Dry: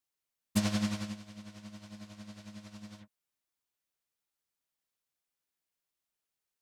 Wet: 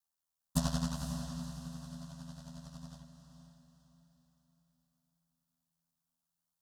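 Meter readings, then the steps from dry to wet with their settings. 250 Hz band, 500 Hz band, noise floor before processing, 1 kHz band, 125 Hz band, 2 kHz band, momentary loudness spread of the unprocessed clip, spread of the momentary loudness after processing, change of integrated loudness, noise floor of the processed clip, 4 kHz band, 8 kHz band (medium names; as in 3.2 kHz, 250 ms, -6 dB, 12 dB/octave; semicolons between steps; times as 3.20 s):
-4.0 dB, -2.5 dB, under -85 dBFS, +0.5 dB, +2.0 dB, -8.0 dB, 18 LU, 22 LU, -6.0 dB, under -85 dBFS, -3.0 dB, 0.0 dB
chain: ring modulator 40 Hz; static phaser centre 930 Hz, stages 4; echo that smears into a reverb 503 ms, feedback 40%, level -8.5 dB; trim +3.5 dB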